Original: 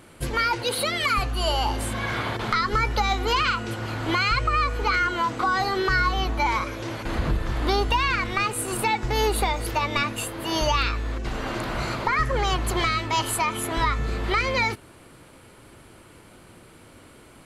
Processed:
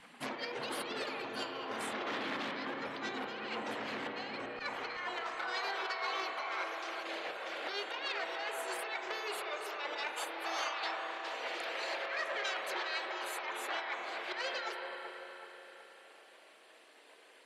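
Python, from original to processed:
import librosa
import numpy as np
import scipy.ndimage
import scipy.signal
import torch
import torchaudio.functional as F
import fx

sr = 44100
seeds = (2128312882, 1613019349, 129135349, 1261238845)

y = fx.highpass(x, sr, hz=fx.steps((0.0, 350.0), (4.59, 750.0)), slope=24)
y = fx.dereverb_blind(y, sr, rt60_s=0.6)
y = fx.lowpass(y, sr, hz=3000.0, slope=6)
y = fx.spec_gate(y, sr, threshold_db=-10, keep='weak')
y = fx.tilt_eq(y, sr, slope=-2.5)
y = fx.over_compress(y, sr, threshold_db=-40.0, ratio=-0.5)
y = fx.echo_wet_lowpass(y, sr, ms=377, feedback_pct=46, hz=1600.0, wet_db=-5.5)
y = fx.rev_spring(y, sr, rt60_s=3.6, pass_ms=(33,), chirp_ms=25, drr_db=4.0)
y = fx.transformer_sat(y, sr, knee_hz=1700.0)
y = y * 10.0 ** (2.0 / 20.0)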